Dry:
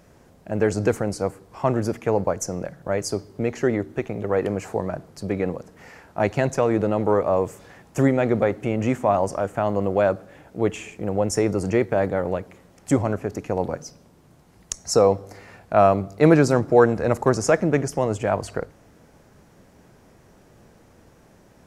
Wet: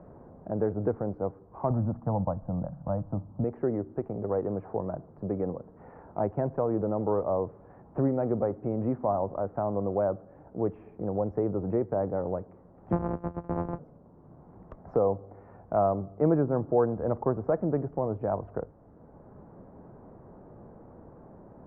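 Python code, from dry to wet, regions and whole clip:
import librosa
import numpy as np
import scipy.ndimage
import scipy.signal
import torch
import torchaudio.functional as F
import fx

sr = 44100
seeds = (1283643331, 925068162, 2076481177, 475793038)

y = fx.chain(x, sr, fx.lowpass(hz=2000.0, slope=12),
    fx.low_shelf(hz=400.0, db=10.0),
    fx.fixed_phaser(hz=970.0, stages=4), at=(1.7, 3.44))
y = fx.chain(y, sr, fx.sample_sort(block=256),
    fx.high_shelf(hz=3500.0, db=4.5), at=(12.92, 13.79))
y = scipy.signal.sosfilt(scipy.signal.butter(4, 1100.0, 'lowpass', fs=sr, output='sos'), y)
y = fx.band_squash(y, sr, depth_pct=40)
y = y * 10.0 ** (-7.0 / 20.0)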